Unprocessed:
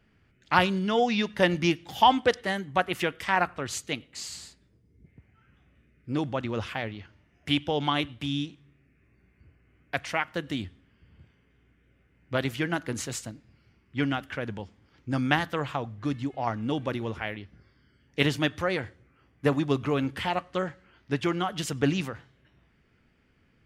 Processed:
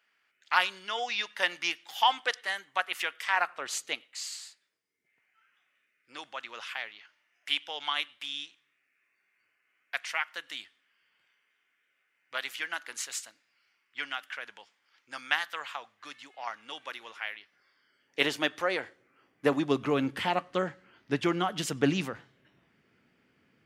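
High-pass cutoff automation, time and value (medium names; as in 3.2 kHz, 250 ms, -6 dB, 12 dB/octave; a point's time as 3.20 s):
3.29 s 1.1 kHz
3.82 s 490 Hz
4.19 s 1.3 kHz
17.36 s 1.3 kHz
18.24 s 420 Hz
18.85 s 420 Hz
20.06 s 170 Hz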